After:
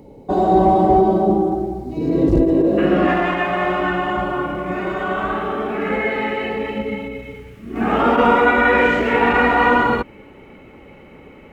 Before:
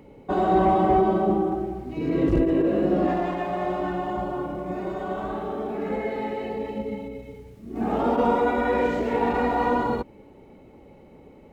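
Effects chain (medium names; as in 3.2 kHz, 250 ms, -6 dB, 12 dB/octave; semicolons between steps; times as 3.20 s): high-order bell 1.9 kHz -9 dB, from 2.77 s +10 dB; trim +6 dB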